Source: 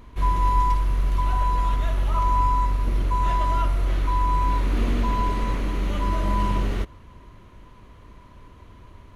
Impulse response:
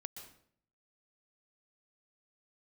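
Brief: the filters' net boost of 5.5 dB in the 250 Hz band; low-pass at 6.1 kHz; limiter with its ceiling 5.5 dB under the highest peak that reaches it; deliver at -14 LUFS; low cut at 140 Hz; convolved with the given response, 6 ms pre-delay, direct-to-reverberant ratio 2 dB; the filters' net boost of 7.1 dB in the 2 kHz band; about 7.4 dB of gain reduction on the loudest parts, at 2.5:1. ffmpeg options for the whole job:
-filter_complex "[0:a]highpass=140,lowpass=6100,equalizer=f=250:t=o:g=7.5,equalizer=f=2000:t=o:g=8.5,acompressor=threshold=0.0316:ratio=2.5,alimiter=level_in=1.06:limit=0.0631:level=0:latency=1,volume=0.944,asplit=2[s0][s1];[1:a]atrim=start_sample=2205,adelay=6[s2];[s1][s2]afir=irnorm=-1:irlink=0,volume=1.19[s3];[s0][s3]amix=inputs=2:normalize=0,volume=5.96"

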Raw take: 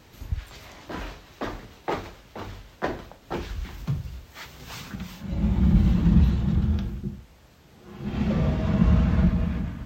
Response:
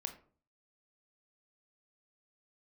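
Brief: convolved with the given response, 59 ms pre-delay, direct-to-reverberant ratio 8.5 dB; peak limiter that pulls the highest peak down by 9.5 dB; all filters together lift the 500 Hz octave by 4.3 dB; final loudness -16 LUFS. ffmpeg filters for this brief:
-filter_complex "[0:a]equalizer=f=500:t=o:g=5.5,alimiter=limit=0.141:level=0:latency=1,asplit=2[s0][s1];[1:a]atrim=start_sample=2205,adelay=59[s2];[s1][s2]afir=irnorm=-1:irlink=0,volume=0.473[s3];[s0][s3]amix=inputs=2:normalize=0,volume=4.47"

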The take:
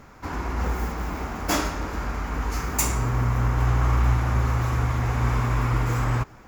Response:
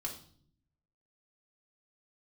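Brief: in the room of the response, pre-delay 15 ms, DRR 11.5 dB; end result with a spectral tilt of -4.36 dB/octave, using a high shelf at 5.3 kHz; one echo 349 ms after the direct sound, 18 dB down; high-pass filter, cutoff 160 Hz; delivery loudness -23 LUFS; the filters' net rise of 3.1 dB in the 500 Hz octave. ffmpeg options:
-filter_complex "[0:a]highpass=160,equalizer=f=500:t=o:g=4,highshelf=f=5300:g=4.5,aecho=1:1:349:0.126,asplit=2[s0][s1];[1:a]atrim=start_sample=2205,adelay=15[s2];[s1][s2]afir=irnorm=-1:irlink=0,volume=0.266[s3];[s0][s3]amix=inputs=2:normalize=0,volume=1.5"

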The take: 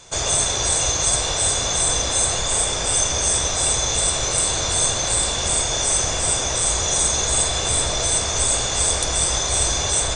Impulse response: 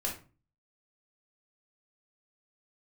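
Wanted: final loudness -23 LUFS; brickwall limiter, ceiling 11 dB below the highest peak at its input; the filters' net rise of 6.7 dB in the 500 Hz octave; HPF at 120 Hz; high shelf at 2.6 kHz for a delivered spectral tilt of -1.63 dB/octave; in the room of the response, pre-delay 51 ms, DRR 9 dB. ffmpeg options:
-filter_complex "[0:a]highpass=120,equalizer=f=500:t=o:g=8.5,highshelf=f=2600:g=-4.5,alimiter=limit=0.133:level=0:latency=1,asplit=2[s0][s1];[1:a]atrim=start_sample=2205,adelay=51[s2];[s1][s2]afir=irnorm=-1:irlink=0,volume=0.237[s3];[s0][s3]amix=inputs=2:normalize=0,volume=1.26"

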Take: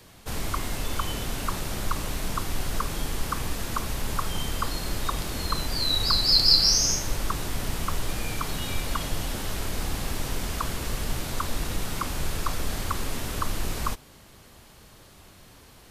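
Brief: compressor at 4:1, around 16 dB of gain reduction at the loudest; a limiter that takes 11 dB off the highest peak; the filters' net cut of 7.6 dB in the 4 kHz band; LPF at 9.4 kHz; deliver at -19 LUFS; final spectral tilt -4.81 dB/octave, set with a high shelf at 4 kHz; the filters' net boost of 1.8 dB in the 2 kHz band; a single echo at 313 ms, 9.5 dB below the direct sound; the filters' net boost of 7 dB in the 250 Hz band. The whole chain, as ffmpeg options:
-af "lowpass=9400,equalizer=f=250:t=o:g=9,equalizer=f=2000:t=o:g=5,highshelf=f=4000:g=-6,equalizer=f=4000:t=o:g=-6,acompressor=threshold=0.00891:ratio=4,alimiter=level_in=5.31:limit=0.0631:level=0:latency=1,volume=0.188,aecho=1:1:313:0.335,volume=29.9"

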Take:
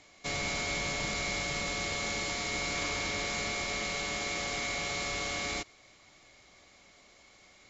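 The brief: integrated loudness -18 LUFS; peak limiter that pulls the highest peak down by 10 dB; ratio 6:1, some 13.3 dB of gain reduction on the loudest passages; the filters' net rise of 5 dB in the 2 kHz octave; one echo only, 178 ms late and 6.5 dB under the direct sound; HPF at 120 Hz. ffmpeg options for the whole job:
-af "highpass=120,equalizer=f=2000:t=o:g=5.5,acompressor=threshold=0.00708:ratio=6,alimiter=level_in=6.68:limit=0.0631:level=0:latency=1,volume=0.15,aecho=1:1:178:0.473,volume=29.9"

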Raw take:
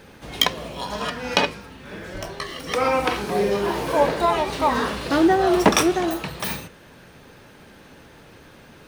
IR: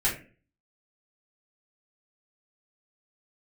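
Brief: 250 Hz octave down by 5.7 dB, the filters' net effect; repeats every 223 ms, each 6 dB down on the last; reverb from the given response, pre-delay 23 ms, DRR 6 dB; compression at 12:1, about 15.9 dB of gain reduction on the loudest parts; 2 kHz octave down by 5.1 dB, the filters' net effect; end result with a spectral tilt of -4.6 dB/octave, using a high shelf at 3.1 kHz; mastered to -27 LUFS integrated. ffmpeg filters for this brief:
-filter_complex "[0:a]equalizer=f=250:t=o:g=-9,equalizer=f=2000:t=o:g=-5,highshelf=f=3100:g=-4,acompressor=threshold=0.0316:ratio=12,aecho=1:1:223|446|669|892|1115|1338:0.501|0.251|0.125|0.0626|0.0313|0.0157,asplit=2[s0][s1];[1:a]atrim=start_sample=2205,adelay=23[s2];[s1][s2]afir=irnorm=-1:irlink=0,volume=0.15[s3];[s0][s3]amix=inputs=2:normalize=0,volume=2"

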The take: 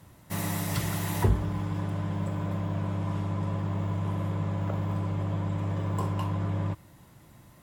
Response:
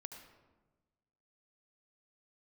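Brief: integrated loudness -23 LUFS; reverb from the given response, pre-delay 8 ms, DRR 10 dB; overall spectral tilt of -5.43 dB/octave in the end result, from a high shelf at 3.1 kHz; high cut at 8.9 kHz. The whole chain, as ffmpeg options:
-filter_complex "[0:a]lowpass=8900,highshelf=f=3100:g=8,asplit=2[s0][s1];[1:a]atrim=start_sample=2205,adelay=8[s2];[s1][s2]afir=irnorm=-1:irlink=0,volume=0.531[s3];[s0][s3]amix=inputs=2:normalize=0,volume=2.51"

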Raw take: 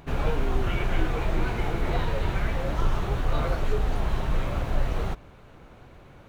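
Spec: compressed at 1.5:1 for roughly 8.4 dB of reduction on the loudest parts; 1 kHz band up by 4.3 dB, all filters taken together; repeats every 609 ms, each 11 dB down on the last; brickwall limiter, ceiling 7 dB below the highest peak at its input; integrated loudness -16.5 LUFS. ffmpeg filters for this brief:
-af "equalizer=f=1000:t=o:g=5.5,acompressor=threshold=0.00794:ratio=1.5,alimiter=level_in=1.19:limit=0.0631:level=0:latency=1,volume=0.841,aecho=1:1:609|1218|1827:0.282|0.0789|0.0221,volume=11.2"

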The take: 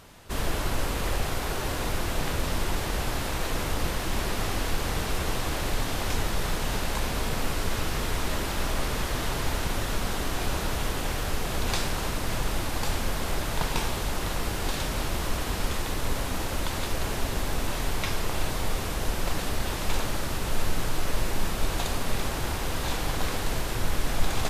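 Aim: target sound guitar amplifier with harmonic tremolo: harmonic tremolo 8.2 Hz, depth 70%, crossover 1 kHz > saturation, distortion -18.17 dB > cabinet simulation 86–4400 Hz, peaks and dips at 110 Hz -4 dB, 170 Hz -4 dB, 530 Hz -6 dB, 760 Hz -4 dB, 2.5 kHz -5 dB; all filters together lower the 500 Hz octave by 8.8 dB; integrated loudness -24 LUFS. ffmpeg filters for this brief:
-filter_complex "[0:a]equalizer=f=500:t=o:g=-8,acrossover=split=1000[s0][s1];[s0]aeval=exprs='val(0)*(1-0.7/2+0.7/2*cos(2*PI*8.2*n/s))':c=same[s2];[s1]aeval=exprs='val(0)*(1-0.7/2-0.7/2*cos(2*PI*8.2*n/s))':c=same[s3];[s2][s3]amix=inputs=2:normalize=0,asoftclip=threshold=0.0944,highpass=86,equalizer=f=110:t=q:w=4:g=-4,equalizer=f=170:t=q:w=4:g=-4,equalizer=f=530:t=q:w=4:g=-6,equalizer=f=760:t=q:w=4:g=-4,equalizer=f=2500:t=q:w=4:g=-5,lowpass=f=4400:w=0.5412,lowpass=f=4400:w=1.3066,volume=5.62"

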